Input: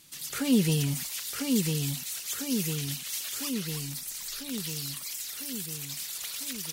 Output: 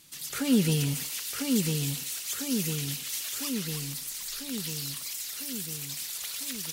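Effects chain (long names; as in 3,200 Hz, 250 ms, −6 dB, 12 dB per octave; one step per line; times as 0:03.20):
feedback echo with a high-pass in the loop 146 ms, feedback 78%, high-pass 810 Hz, level −11 dB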